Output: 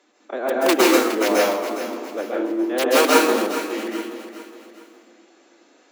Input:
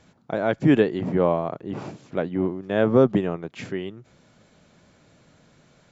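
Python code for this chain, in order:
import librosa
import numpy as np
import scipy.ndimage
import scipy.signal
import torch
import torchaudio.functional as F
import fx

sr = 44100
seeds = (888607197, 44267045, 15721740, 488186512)

p1 = (np.mod(10.0 ** (8.5 / 20.0) * x + 1.0, 2.0) - 1.0) / 10.0 ** (8.5 / 20.0)
p2 = scipy.signal.sosfilt(scipy.signal.butter(6, 240.0, 'highpass', fs=sr, output='sos'), p1)
p3 = fx.pitch_keep_formants(p2, sr, semitones=3.0)
p4 = p3 + fx.echo_feedback(p3, sr, ms=413, feedback_pct=41, wet_db=-11.5, dry=0)
p5 = fx.rev_plate(p4, sr, seeds[0], rt60_s=0.73, hf_ratio=0.85, predelay_ms=120, drr_db=-4.0)
y = p5 * 10.0 ** (-1.5 / 20.0)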